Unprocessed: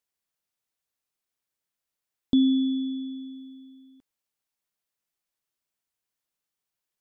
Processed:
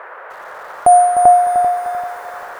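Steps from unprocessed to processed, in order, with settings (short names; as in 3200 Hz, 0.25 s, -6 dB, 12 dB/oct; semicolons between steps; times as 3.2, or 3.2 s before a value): bell 1500 Hz -10.5 dB 0.55 oct; band noise 170–620 Hz -51 dBFS; wide varispeed 2.7×; darkening echo 0.391 s, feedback 35%, low-pass 2200 Hz, level -3 dB; maximiser +17.5 dB; lo-fi delay 0.303 s, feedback 35%, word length 6-bit, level -9 dB; gain -1 dB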